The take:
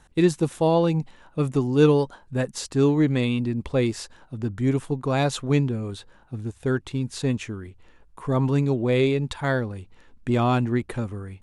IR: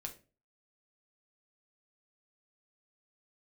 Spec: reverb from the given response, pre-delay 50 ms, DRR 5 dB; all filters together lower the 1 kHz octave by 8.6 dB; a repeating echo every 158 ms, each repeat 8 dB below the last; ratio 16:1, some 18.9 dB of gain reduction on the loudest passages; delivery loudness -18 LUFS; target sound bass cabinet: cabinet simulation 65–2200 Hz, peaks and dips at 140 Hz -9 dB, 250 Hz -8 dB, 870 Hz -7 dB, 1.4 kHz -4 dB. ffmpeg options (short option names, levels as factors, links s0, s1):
-filter_complex "[0:a]equalizer=f=1000:t=o:g=-7,acompressor=threshold=0.0251:ratio=16,aecho=1:1:158|316|474|632|790:0.398|0.159|0.0637|0.0255|0.0102,asplit=2[s0][s1];[1:a]atrim=start_sample=2205,adelay=50[s2];[s1][s2]afir=irnorm=-1:irlink=0,volume=0.75[s3];[s0][s3]amix=inputs=2:normalize=0,highpass=f=65:w=0.5412,highpass=f=65:w=1.3066,equalizer=f=140:t=q:w=4:g=-9,equalizer=f=250:t=q:w=4:g=-8,equalizer=f=870:t=q:w=4:g=-7,equalizer=f=1400:t=q:w=4:g=-4,lowpass=f=2200:w=0.5412,lowpass=f=2200:w=1.3066,volume=11.9"